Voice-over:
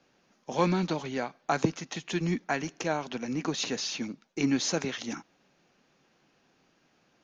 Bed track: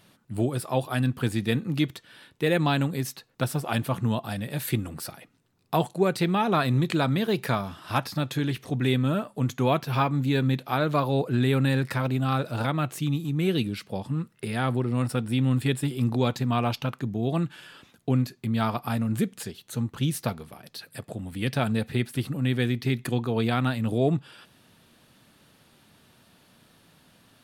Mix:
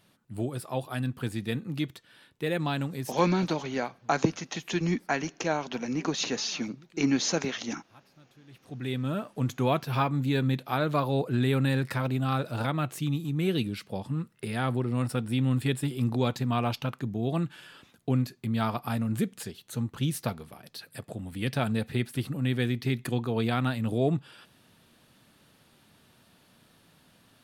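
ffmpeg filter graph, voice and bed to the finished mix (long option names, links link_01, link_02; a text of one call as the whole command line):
ffmpeg -i stem1.wav -i stem2.wav -filter_complex "[0:a]adelay=2600,volume=1.5dB[link_01];[1:a]volume=21.5dB,afade=type=out:start_time=3.05:duration=0.44:silence=0.0630957,afade=type=in:start_time=8.46:duration=0.93:silence=0.0421697[link_02];[link_01][link_02]amix=inputs=2:normalize=0" out.wav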